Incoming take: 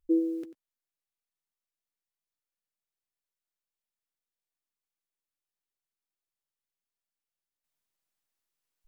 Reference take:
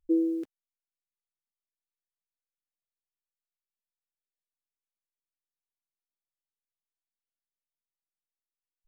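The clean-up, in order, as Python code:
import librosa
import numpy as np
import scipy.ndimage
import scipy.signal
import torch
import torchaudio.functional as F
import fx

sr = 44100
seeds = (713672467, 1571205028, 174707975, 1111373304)

y = fx.fix_echo_inverse(x, sr, delay_ms=93, level_db=-14.5)
y = fx.gain(y, sr, db=fx.steps((0.0, 0.0), (7.64, -8.0)))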